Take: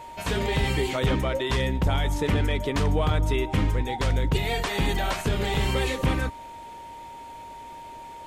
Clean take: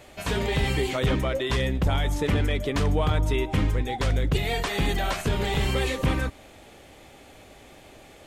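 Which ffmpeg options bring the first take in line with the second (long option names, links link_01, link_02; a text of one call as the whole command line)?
ffmpeg -i in.wav -af "bandreject=frequency=930:width=30" out.wav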